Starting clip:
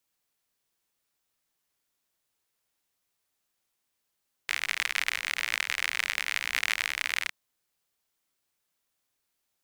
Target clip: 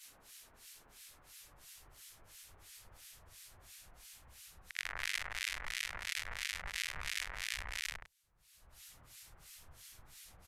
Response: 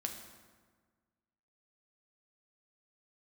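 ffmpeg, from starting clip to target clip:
-filter_complex "[0:a]afftfilt=real='re':imag='-im':win_size=8192:overlap=0.75,acompressor=mode=upward:threshold=0.00631:ratio=2.5,alimiter=limit=0.0631:level=0:latency=1:release=94,acrossover=split=1700[s0][s1];[s0]aeval=exprs='val(0)*(1-1/2+1/2*cos(2*PI*3.2*n/s))':c=same[s2];[s1]aeval=exprs='val(0)*(1-1/2-1/2*cos(2*PI*3.2*n/s))':c=same[s3];[s2][s3]amix=inputs=2:normalize=0,aresample=32000,aresample=44100,adynamicequalizer=threshold=0.001:dfrequency=1700:dqfactor=0.81:tfrequency=1700:tqfactor=0.81:attack=5:release=100:ratio=0.375:range=3.5:mode=cutabove:tftype=bell,asetrate=40572,aresample=44100,asubboost=boost=10:cutoff=90,volume=3.35"

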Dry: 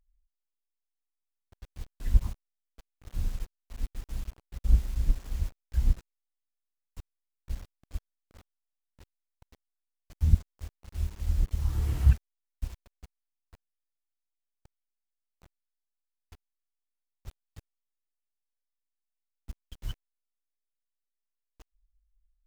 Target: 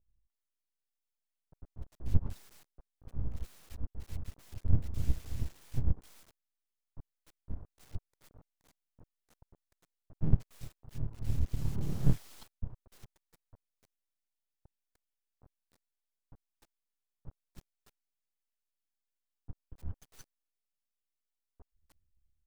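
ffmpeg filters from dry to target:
-filter_complex "[0:a]acrossover=split=1100[s0][s1];[s1]adelay=300[s2];[s0][s2]amix=inputs=2:normalize=0,aeval=exprs='abs(val(0))':c=same,volume=0.75"

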